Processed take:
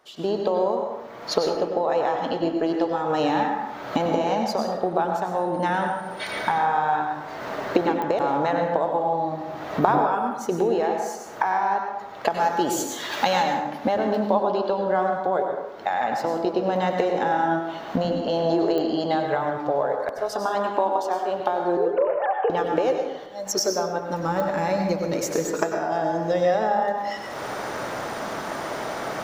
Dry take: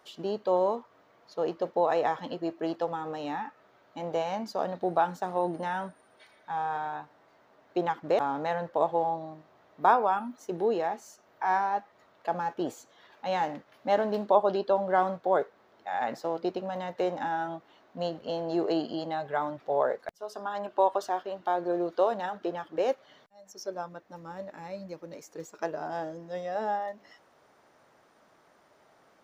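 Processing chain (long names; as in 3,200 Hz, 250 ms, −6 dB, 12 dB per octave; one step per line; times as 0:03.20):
0:21.77–0:22.50: three sine waves on the formant tracks
camcorder AGC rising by 38 dB per second
0:12.30–0:13.43: high-shelf EQ 2,900 Hz +12 dB
0:25.56–0:26.21: notch comb filter 260 Hz
dense smooth reverb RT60 1 s, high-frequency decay 0.55×, pre-delay 85 ms, DRR 3 dB
digital clicks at 0:08.02/0:18.78/0:24.40, −16 dBFS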